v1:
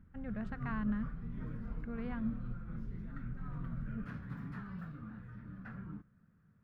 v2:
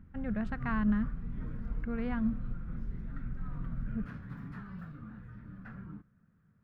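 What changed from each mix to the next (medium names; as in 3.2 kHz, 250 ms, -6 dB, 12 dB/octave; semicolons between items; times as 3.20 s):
speech +6.5 dB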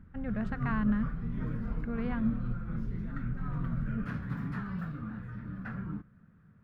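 background +8.0 dB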